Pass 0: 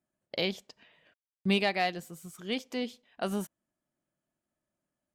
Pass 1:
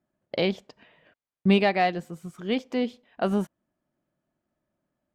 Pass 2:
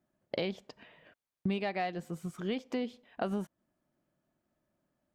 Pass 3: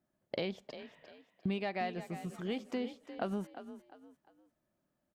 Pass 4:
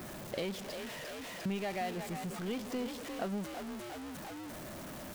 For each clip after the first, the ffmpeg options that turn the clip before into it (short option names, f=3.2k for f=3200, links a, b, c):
-af "lowpass=f=1.5k:p=1,volume=8dB"
-af "acompressor=threshold=-31dB:ratio=5"
-filter_complex "[0:a]asplit=4[a][b][c][d];[b]adelay=351,afreqshift=35,volume=-12dB[e];[c]adelay=702,afreqshift=70,volume=-21.6dB[f];[d]adelay=1053,afreqshift=105,volume=-31.3dB[g];[a][e][f][g]amix=inputs=4:normalize=0,volume=-2.5dB"
-af "aeval=exprs='val(0)+0.5*0.0178*sgn(val(0))':c=same,volume=-3.5dB"